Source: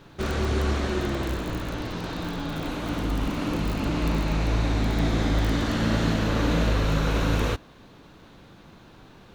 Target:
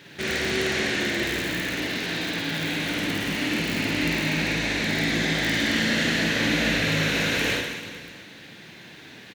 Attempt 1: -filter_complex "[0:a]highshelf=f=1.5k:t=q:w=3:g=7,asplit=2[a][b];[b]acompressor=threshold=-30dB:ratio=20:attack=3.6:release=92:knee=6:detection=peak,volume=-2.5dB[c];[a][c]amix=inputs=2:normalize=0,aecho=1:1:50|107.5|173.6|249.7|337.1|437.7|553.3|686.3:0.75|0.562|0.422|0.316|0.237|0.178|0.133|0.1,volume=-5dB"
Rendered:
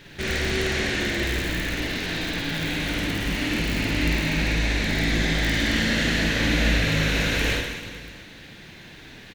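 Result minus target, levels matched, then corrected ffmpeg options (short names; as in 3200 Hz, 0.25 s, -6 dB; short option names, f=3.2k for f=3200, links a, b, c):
125 Hz band +4.0 dB
-filter_complex "[0:a]highpass=140,highshelf=f=1.5k:t=q:w=3:g=7,asplit=2[a][b];[b]acompressor=threshold=-30dB:ratio=20:attack=3.6:release=92:knee=6:detection=peak,volume=-2.5dB[c];[a][c]amix=inputs=2:normalize=0,aecho=1:1:50|107.5|173.6|249.7|337.1|437.7|553.3|686.3:0.75|0.562|0.422|0.316|0.237|0.178|0.133|0.1,volume=-5dB"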